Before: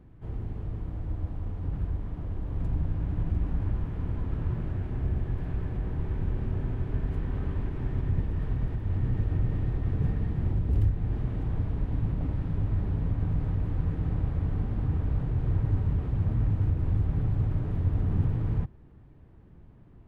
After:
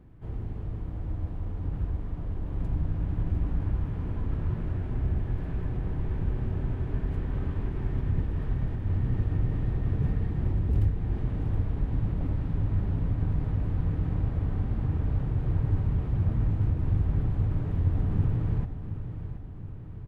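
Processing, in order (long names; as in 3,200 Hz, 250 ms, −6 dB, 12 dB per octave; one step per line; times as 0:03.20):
repeating echo 723 ms, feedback 55%, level −10.5 dB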